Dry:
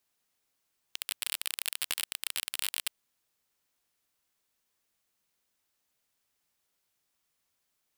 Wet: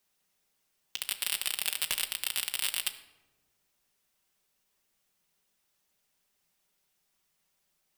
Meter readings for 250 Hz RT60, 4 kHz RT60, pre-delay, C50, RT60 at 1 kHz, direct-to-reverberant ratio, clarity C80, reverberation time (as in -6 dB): 2.0 s, 0.65 s, 5 ms, 12.5 dB, 1.0 s, 4.5 dB, 14.5 dB, 1.2 s